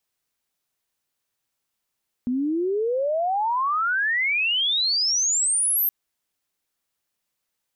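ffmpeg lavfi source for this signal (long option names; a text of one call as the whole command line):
ffmpeg -f lavfi -i "aevalsrc='pow(10,(-21+2.5*t/3.62)/20)*sin(2*PI*240*3.62/log(13000/240)*(exp(log(13000/240)*t/3.62)-1))':duration=3.62:sample_rate=44100" out.wav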